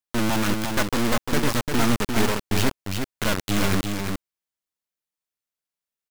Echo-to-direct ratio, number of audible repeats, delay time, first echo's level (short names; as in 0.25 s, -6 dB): -5.0 dB, 1, 0.349 s, -5.0 dB